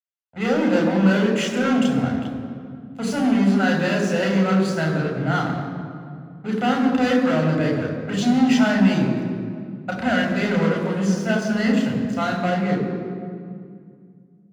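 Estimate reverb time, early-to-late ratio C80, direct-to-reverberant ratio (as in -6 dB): 2.2 s, 5.5 dB, -0.5 dB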